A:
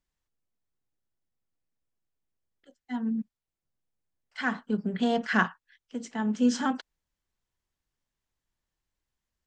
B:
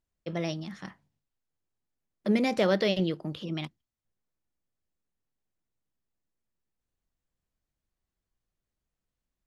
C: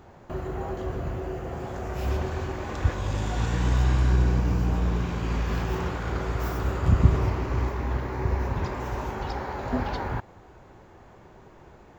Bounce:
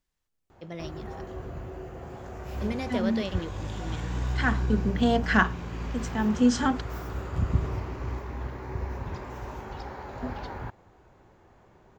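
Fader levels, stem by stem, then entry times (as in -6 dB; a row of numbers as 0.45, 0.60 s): +2.5, -7.0, -7.0 dB; 0.00, 0.35, 0.50 s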